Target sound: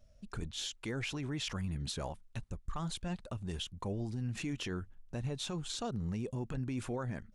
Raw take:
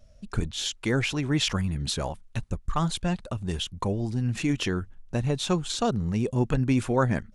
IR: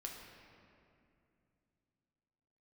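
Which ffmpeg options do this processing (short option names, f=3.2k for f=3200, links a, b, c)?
-af "alimiter=limit=-21dB:level=0:latency=1:release=59,volume=-8dB"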